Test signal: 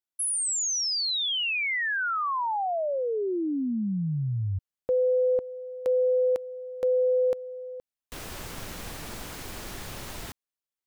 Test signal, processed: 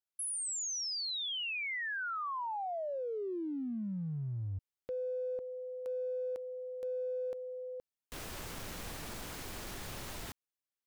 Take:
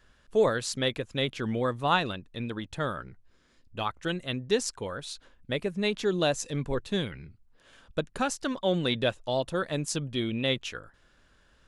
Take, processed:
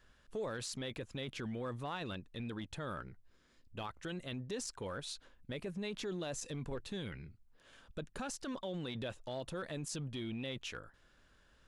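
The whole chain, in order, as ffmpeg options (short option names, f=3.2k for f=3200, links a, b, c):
-af "acompressor=threshold=-31dB:ratio=6:attack=0.15:release=41:knee=1:detection=peak,volume=-4.5dB"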